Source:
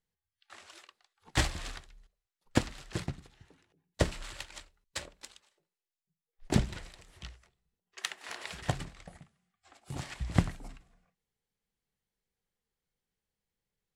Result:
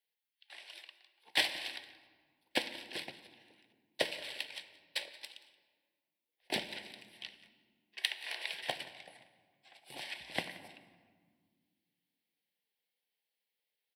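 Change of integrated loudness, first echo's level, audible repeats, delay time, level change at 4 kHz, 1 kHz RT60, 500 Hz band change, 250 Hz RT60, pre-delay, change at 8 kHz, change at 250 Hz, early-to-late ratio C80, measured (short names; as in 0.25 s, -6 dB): -3.0 dB, -20.0 dB, 1, 0.177 s, +4.5 dB, 1.7 s, -4.0 dB, 2.8 s, 3 ms, -6.5 dB, -13.0 dB, 13.0 dB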